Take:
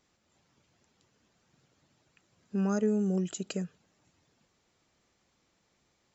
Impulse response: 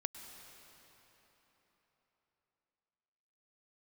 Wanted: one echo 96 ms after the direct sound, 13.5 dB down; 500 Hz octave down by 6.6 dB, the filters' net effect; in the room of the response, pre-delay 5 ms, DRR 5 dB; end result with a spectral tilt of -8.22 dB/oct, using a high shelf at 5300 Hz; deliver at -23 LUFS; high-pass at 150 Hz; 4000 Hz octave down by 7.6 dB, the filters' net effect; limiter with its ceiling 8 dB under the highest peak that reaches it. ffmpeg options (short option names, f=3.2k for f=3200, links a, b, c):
-filter_complex "[0:a]highpass=150,equalizer=f=500:t=o:g=-8.5,equalizer=f=4k:t=o:g=-8.5,highshelf=f=5.3k:g=-5.5,alimiter=level_in=6dB:limit=-24dB:level=0:latency=1,volume=-6dB,aecho=1:1:96:0.211,asplit=2[a][b];[1:a]atrim=start_sample=2205,adelay=5[c];[b][c]afir=irnorm=-1:irlink=0,volume=-4dB[d];[a][d]amix=inputs=2:normalize=0,volume=12dB"